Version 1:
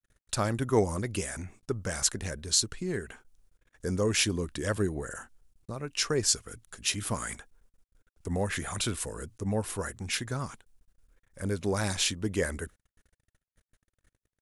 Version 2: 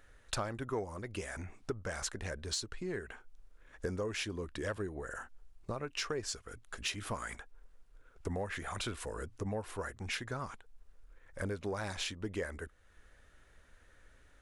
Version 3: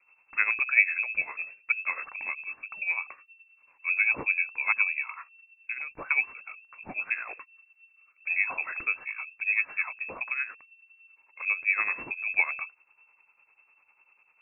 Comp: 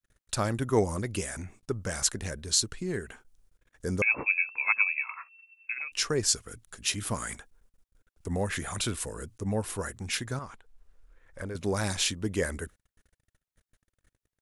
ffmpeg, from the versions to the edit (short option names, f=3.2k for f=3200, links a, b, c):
-filter_complex "[0:a]asplit=3[a][b][c];[a]atrim=end=4.022[d];[2:a]atrim=start=4.018:end=5.922[e];[b]atrim=start=5.918:end=10.392[f];[1:a]atrim=start=10.388:end=11.552[g];[c]atrim=start=11.548[h];[d][e]acrossfade=d=0.004:c1=hsin:c2=hsin[i];[i][f]acrossfade=d=0.004:c1=hsin:c2=hsin[j];[j][g]acrossfade=d=0.004:c1=hsin:c2=hsin[k];[k][h]acrossfade=d=0.004:c1=hsin:c2=hsin"